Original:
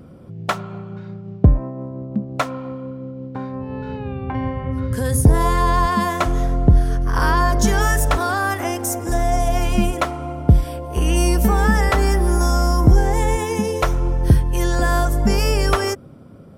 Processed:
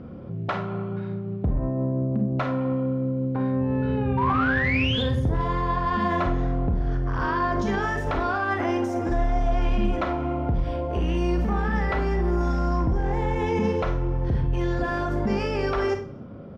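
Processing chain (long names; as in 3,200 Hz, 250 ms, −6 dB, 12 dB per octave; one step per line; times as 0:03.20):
parametric band 14,000 Hz −3.5 dB 0.95 octaves
mains-hum notches 50/100/150/200 Hz
in parallel at −1.5 dB: downward compressor, threshold −26 dBFS, peak gain reduction 17.5 dB
on the sum: brickwall limiter −13.5 dBFS, peak gain reduction 12 dB
sound drawn into the spectrogram rise, 0:04.17–0:05.03, 920–3,700 Hz −21 dBFS
asymmetric clip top −16.5 dBFS, bottom −14 dBFS
high-frequency loss of the air 250 metres
repeating echo 130 ms, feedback 34%, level −23 dB
four-comb reverb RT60 0.31 s, combs from 31 ms, DRR 5 dB
level −2.5 dB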